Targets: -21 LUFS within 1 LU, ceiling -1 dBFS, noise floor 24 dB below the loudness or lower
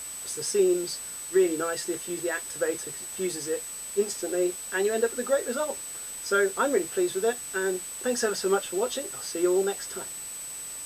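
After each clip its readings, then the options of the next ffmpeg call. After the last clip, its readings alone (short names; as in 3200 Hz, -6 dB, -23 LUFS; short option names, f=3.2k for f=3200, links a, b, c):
steady tone 8000 Hz; tone level -36 dBFS; noise floor -38 dBFS; noise floor target -52 dBFS; loudness -28.0 LUFS; peak -12.0 dBFS; loudness target -21.0 LUFS
-> -af "bandreject=f=8k:w=30"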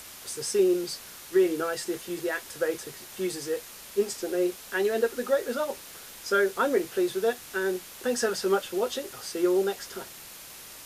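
steady tone none; noise floor -45 dBFS; noise floor target -53 dBFS
-> -af "afftdn=nr=8:nf=-45"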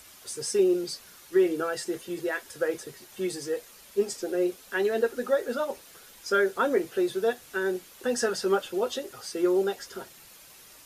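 noise floor -52 dBFS; noise floor target -53 dBFS
-> -af "afftdn=nr=6:nf=-52"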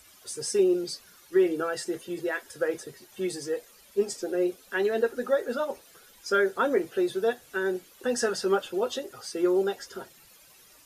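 noise floor -56 dBFS; loudness -28.5 LUFS; peak -12.5 dBFS; loudness target -21.0 LUFS
-> -af "volume=7.5dB"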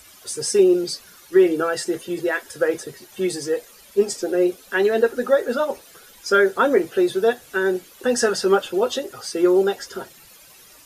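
loudness -21.0 LUFS; peak -5.0 dBFS; noise floor -48 dBFS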